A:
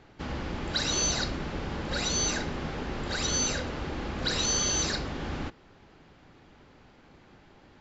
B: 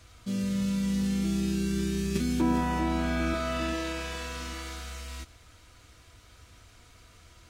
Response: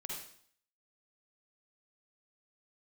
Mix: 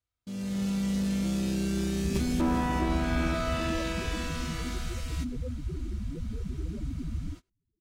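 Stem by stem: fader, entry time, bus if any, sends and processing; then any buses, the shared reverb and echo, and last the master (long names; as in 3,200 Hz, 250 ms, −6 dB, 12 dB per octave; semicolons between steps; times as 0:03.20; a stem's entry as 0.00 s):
+2.5 dB, 1.85 s, no send, Bessel low-pass filter 770 Hz; downward compressor 2 to 1, threshold −41 dBFS, peak gain reduction 7 dB; spectral peaks only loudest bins 4
−7.5 dB, 0.00 s, no send, asymmetric clip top −27.5 dBFS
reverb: not used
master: noise gate −48 dBFS, range −30 dB; automatic gain control gain up to 8 dB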